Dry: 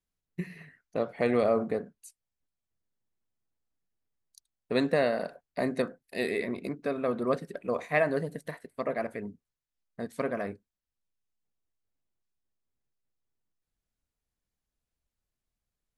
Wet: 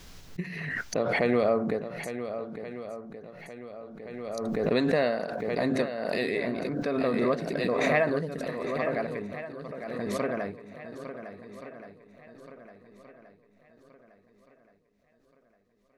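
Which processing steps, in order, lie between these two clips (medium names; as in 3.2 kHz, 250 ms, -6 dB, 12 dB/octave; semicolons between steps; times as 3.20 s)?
resonant high shelf 7.1 kHz -6.5 dB, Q 1.5; shuffle delay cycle 1425 ms, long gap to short 1.5:1, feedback 38%, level -10.5 dB; swell ahead of each attack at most 26 dB/s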